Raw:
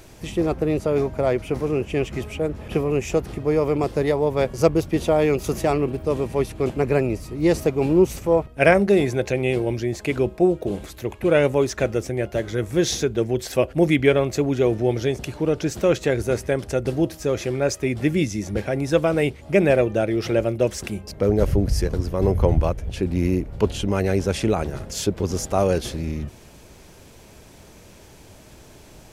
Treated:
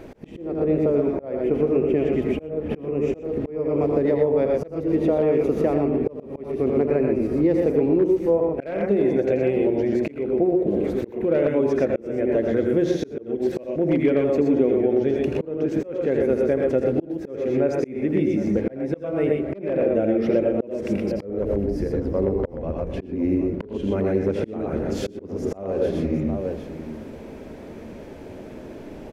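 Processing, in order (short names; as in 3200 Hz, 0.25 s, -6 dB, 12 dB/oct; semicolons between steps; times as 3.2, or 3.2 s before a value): tapped delay 83/110/123/757 ms -7/-9/-5.5/-16 dB; on a send at -18 dB: reverb RT60 1.7 s, pre-delay 0.117 s; on the sum: wavefolder -7 dBFS; high shelf 3000 Hz -11.5 dB; notches 60/120/180/240/300/360/420/480 Hz; compressor 5:1, threshold -28 dBFS, peak gain reduction 15.5 dB; ten-band EQ 250 Hz +12 dB, 500 Hz +9 dB, 2000 Hz +5 dB, 8000 Hz -4 dB; auto swell 0.317 s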